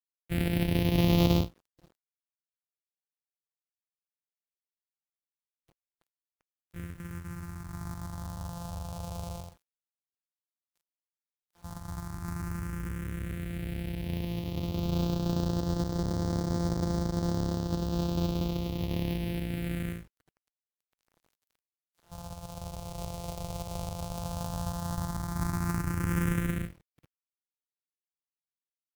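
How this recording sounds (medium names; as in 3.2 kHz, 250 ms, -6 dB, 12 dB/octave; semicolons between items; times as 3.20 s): a buzz of ramps at a fixed pitch in blocks of 256 samples; phasing stages 4, 0.075 Hz, lowest notch 290–2500 Hz; a quantiser's noise floor 10-bit, dither none; Vorbis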